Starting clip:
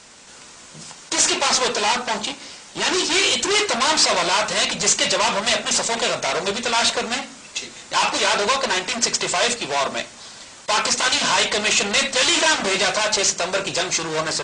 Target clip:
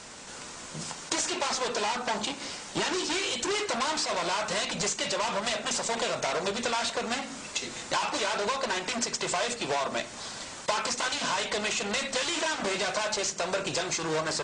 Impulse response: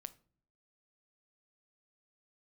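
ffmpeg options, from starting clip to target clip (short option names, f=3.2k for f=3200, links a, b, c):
-filter_complex "[0:a]acompressor=threshold=-27dB:ratio=10,asplit=2[a][b];[1:a]atrim=start_sample=2205,lowpass=2.1k[c];[b][c]afir=irnorm=-1:irlink=0,volume=-3dB[d];[a][d]amix=inputs=2:normalize=0"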